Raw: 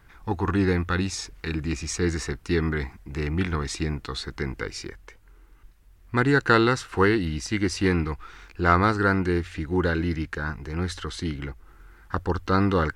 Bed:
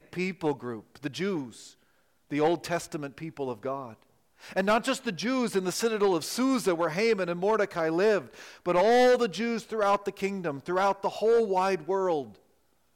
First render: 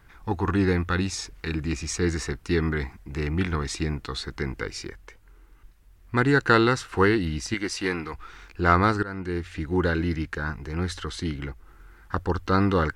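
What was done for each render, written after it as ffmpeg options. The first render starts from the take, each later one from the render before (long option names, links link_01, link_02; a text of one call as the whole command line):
ffmpeg -i in.wav -filter_complex "[0:a]asettb=1/sr,asplit=3[link_01][link_02][link_03];[link_01]atrim=end=7.544[link_04];[link_02]atrim=start=7.54:end=8.14,asetpts=PTS-STARTPTS,afade=type=in:duration=0.004:curve=qsin,afade=type=out:start_time=0.596:duration=0.004:curve=qsin,equalizer=frequency=83:width=0.41:gain=-15[link_05];[link_03]atrim=start=8.136[link_06];[link_04][link_05]acrossfade=duration=0.004:curve1=hsin:curve2=qsin[link_07];[link_07][link_06]acrossfade=duration=0.004:curve1=qsin:curve2=hsin,asplit=2[link_08][link_09];[link_08]atrim=end=9.03,asetpts=PTS-STARTPTS,afade=type=out:start_time=9.026:duration=0.004:curve=hsin:silence=0.112202[link_10];[link_09]atrim=start=9.03,asetpts=PTS-STARTPTS,afade=type=in:duration=0.6:silence=0.112202[link_11];[link_10][link_11]concat=n=2:v=0:a=1" out.wav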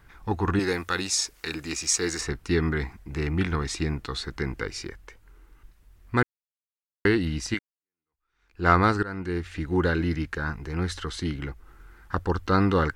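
ffmpeg -i in.wav -filter_complex "[0:a]asettb=1/sr,asplit=3[link_01][link_02][link_03];[link_01]atrim=end=0.594[link_04];[link_02]atrim=start=0.59:end=2.21,asetpts=PTS-STARTPTS,afade=type=in:duration=0.004:curve=qsin,afade=type=out:start_time=1.616:duration=0.004:curve=qsin,bass=frequency=250:gain=-13,treble=frequency=4000:gain=10[link_05];[link_03]atrim=start=2.206[link_06];[link_04][link_05]acrossfade=duration=0.004:curve1=hsin:curve2=qsin[link_07];[link_07][link_06]acrossfade=duration=0.004:curve1=qsin:curve2=hsin,asplit=4[link_08][link_09][link_10][link_11];[link_08]atrim=end=6.23,asetpts=PTS-STARTPTS,afade=type=out:start_time=6.226:duration=0.004:curve=hsin[link_12];[link_09]atrim=start=6.23:end=7.05,asetpts=PTS-STARTPTS,volume=0[link_13];[link_10]atrim=start=7.05:end=7.59,asetpts=PTS-STARTPTS,afade=type=in:duration=0.004:curve=hsin,afade=type=out:start_time=0.536:duration=0.004:curve=hsin[link_14];[link_11]atrim=start=7.59,asetpts=PTS-STARTPTS,afade=type=in:duration=1.08:curve=exp[link_15];[link_12][link_13][link_14][link_15]concat=n=4:v=0:a=1" out.wav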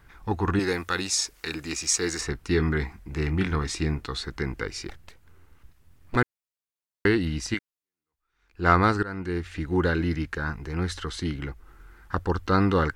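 ffmpeg -i in.wav -filter_complex "[0:a]asettb=1/sr,asplit=3[link_01][link_02][link_03];[link_01]atrim=end=2.524[link_04];[link_02]atrim=start=2.52:end=4.07,asetpts=PTS-STARTPTS,afade=type=in:duration=0.004:curve=qsin,afade=type=out:start_time=1.546:duration=0.004:curve=qsin,asplit=2[link_05][link_06];[link_06]adelay=26,volume=-12dB[link_07];[link_05][link_07]amix=inputs=2:normalize=0,atrim=end_sample=68355[link_08];[link_03]atrim=start=4.066[link_09];[link_04][link_08]acrossfade=duration=0.004:curve1=hsin:curve2=qsin[link_10];[link_10][link_09]acrossfade=duration=0.004:curve1=qsin:curve2=hsin,asettb=1/sr,asplit=3[link_11][link_12][link_13];[link_11]atrim=end=4.894[link_14];[link_12]atrim=start=4.89:end=6.16,asetpts=PTS-STARTPTS,afade=type=in:duration=0.004:curve=qsin,afade=type=out:start_time=1.266:duration=0.004:curve=qsin,aeval=exprs='abs(val(0))':channel_layout=same[link_15];[link_13]atrim=start=6.156[link_16];[link_14][link_15]acrossfade=duration=0.004:curve1=hsin:curve2=qsin[link_17];[link_17][link_16]acrossfade=duration=0.004:curve1=qsin:curve2=hsin" out.wav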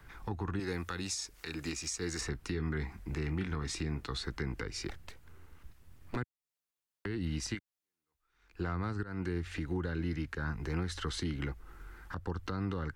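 ffmpeg -i in.wav -filter_complex "[0:a]acrossover=split=110|220[link_01][link_02][link_03];[link_01]acompressor=threshold=-36dB:ratio=4[link_04];[link_02]acompressor=threshold=-34dB:ratio=4[link_05];[link_03]acompressor=threshold=-34dB:ratio=4[link_06];[link_04][link_05][link_06]amix=inputs=3:normalize=0,alimiter=level_in=1.5dB:limit=-24dB:level=0:latency=1:release=312,volume=-1.5dB" out.wav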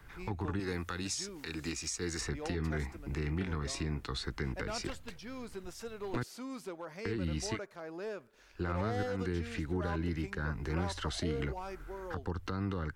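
ffmpeg -i in.wav -i bed.wav -filter_complex "[1:a]volume=-17dB[link_01];[0:a][link_01]amix=inputs=2:normalize=0" out.wav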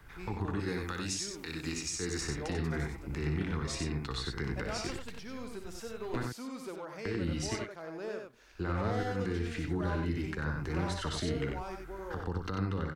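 ffmpeg -i in.wav -af "aecho=1:1:61.22|93.29:0.355|0.562" out.wav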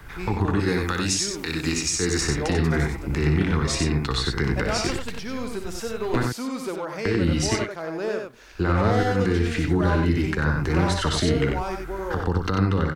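ffmpeg -i in.wav -af "volume=12dB" out.wav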